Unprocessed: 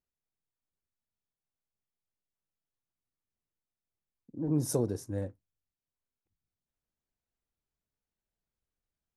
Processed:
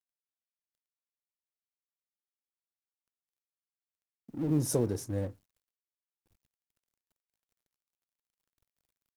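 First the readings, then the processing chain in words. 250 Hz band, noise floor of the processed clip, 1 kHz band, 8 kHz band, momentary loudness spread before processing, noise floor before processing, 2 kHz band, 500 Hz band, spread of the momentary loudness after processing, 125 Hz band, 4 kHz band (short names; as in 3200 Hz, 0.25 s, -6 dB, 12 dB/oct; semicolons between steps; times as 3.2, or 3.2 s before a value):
+1.0 dB, under -85 dBFS, +1.0 dB, +2.0 dB, 12 LU, under -85 dBFS, +3.5 dB, +1.0 dB, 11 LU, +1.5 dB, +2.5 dB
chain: G.711 law mismatch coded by mu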